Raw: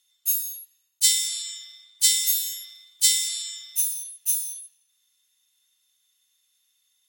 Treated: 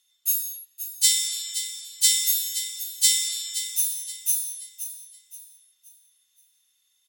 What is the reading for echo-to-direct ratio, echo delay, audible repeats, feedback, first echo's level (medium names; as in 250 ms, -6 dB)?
-10.5 dB, 524 ms, 3, 36%, -11.0 dB